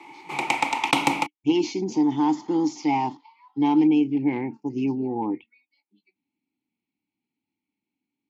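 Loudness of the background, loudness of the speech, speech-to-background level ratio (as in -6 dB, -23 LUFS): -24.5 LUFS, -24.0 LUFS, 0.5 dB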